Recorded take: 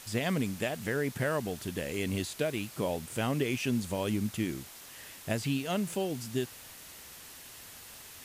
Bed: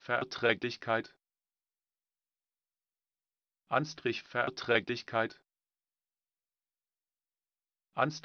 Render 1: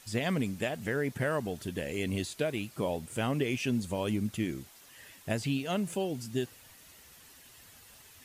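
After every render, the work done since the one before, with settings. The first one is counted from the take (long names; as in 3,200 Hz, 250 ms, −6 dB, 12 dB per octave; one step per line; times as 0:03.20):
broadband denoise 8 dB, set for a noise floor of −49 dBFS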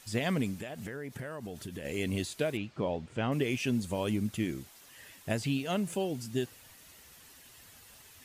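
0:00.58–0:01.85: downward compressor, threshold −36 dBFS
0:02.57–0:03.32: high-frequency loss of the air 160 metres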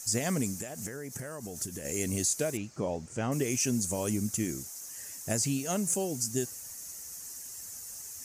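high shelf with overshoot 4,700 Hz +11 dB, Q 3
notch filter 990 Hz, Q 27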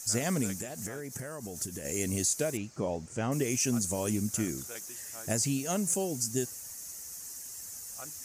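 mix in bed −18.5 dB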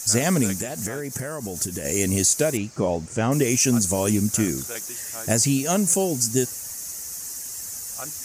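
level +9.5 dB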